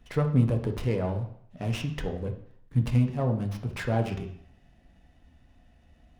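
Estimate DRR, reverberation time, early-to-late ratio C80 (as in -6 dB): 4.0 dB, 0.65 s, 13.5 dB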